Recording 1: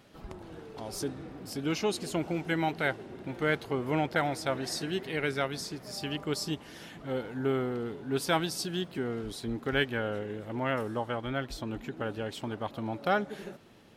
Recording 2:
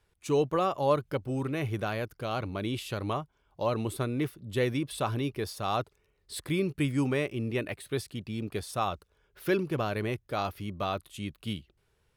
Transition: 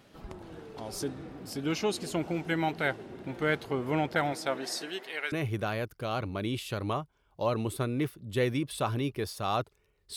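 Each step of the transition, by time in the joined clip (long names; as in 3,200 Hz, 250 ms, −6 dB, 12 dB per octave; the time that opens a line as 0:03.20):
recording 1
0:04.32–0:05.32: high-pass filter 160 Hz → 950 Hz
0:05.32: continue with recording 2 from 0:01.52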